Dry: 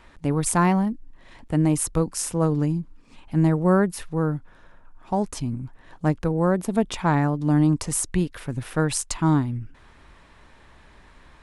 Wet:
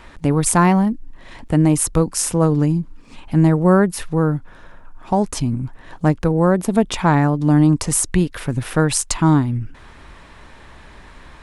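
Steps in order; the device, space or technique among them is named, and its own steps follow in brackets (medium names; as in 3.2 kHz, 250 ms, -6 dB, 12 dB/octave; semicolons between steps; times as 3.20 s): parallel compression (in parallel at -2 dB: compression, threshold -28 dBFS, peak gain reduction 14.5 dB); on the sum: trim +4 dB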